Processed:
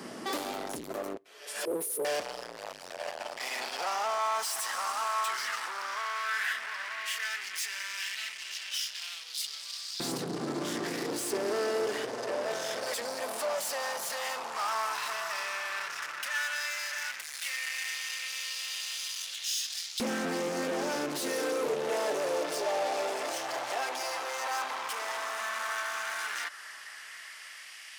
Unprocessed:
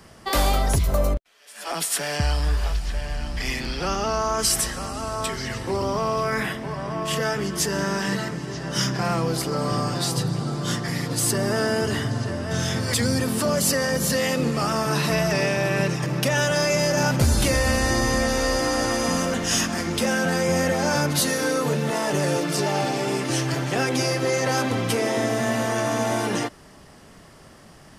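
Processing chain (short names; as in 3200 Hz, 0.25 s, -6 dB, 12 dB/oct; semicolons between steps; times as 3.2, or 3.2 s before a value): 1.65–2.05 Chebyshev band-stop 510–9700 Hz, order 5; compressor, threshold -27 dBFS, peak gain reduction 11.5 dB; in parallel at -2.5 dB: limiter -28 dBFS, peak gain reduction 11 dB; on the sum: hard clip -32 dBFS, distortion -7 dB; LFO high-pass saw up 0.1 Hz 260–4100 Hz; on a send at -23.5 dB: reverb RT60 0.40 s, pre-delay 5 ms; on the sum: Doppler distortion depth 0.19 ms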